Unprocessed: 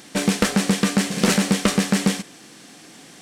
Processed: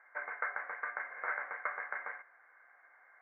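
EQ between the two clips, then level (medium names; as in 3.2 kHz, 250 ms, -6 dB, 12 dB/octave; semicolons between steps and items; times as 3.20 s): ladder high-pass 910 Hz, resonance 45%; rippled Chebyshev low-pass 2.2 kHz, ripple 9 dB; +1.0 dB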